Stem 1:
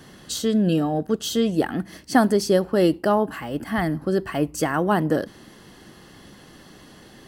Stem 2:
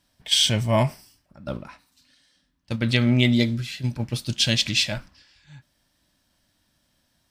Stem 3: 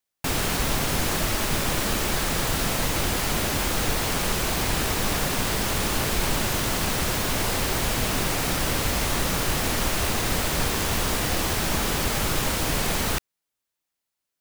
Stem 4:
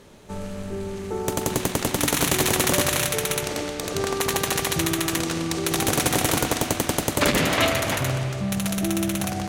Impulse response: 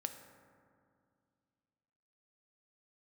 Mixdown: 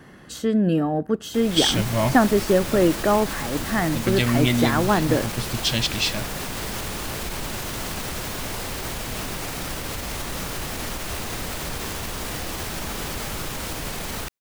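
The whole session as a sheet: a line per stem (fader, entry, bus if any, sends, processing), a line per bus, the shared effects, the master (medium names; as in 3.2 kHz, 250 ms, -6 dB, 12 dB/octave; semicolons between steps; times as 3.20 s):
0.0 dB, 0.00 s, no send, resonant high shelf 2.8 kHz -7 dB, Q 1.5
-2.0 dB, 1.25 s, no send, none
-13.0 dB, 1.10 s, no send, peak limiter -17 dBFS, peak gain reduction 6.5 dB; level rider gain up to 10 dB
mute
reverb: none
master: none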